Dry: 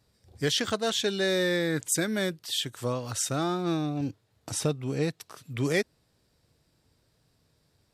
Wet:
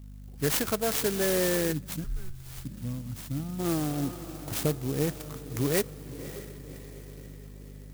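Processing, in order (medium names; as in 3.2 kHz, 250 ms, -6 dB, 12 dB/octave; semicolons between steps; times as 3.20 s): hum 50 Hz, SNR 14 dB; echo that smears into a reverb 567 ms, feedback 54%, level -13.5 dB; on a send at -24 dB: reverberation RT60 2.4 s, pre-delay 3 ms; 1.72–3.59 s: on the sum: time-frequency box 310–9800 Hz -20 dB; 2.04–2.65 s: frequency shift -180 Hz; sampling jitter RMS 0.1 ms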